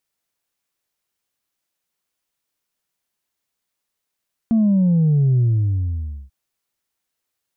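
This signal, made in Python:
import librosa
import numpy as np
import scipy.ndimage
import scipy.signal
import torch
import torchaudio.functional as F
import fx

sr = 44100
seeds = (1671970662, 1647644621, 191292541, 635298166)

y = fx.sub_drop(sr, level_db=-13.0, start_hz=230.0, length_s=1.79, drive_db=1, fade_s=0.91, end_hz=65.0)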